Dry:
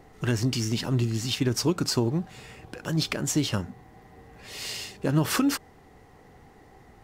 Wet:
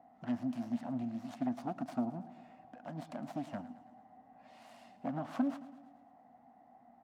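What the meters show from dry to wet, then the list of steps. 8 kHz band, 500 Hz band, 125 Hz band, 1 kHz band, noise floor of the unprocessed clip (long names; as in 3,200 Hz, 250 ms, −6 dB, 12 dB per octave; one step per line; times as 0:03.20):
below −30 dB, −13.5 dB, −21.5 dB, −6.5 dB, −54 dBFS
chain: phase distortion by the signal itself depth 0.39 ms
pair of resonant band-passes 410 Hz, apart 1.5 octaves
low-shelf EQ 410 Hz −9.5 dB
repeating echo 110 ms, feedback 59%, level −16 dB
level +4.5 dB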